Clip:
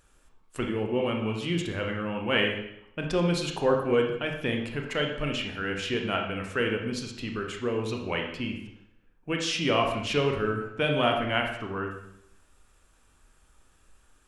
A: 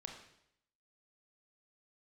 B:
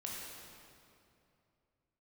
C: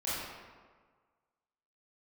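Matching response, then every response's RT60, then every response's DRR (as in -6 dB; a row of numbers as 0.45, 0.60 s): A; 0.75, 2.6, 1.6 s; 2.0, -4.0, -11.0 dB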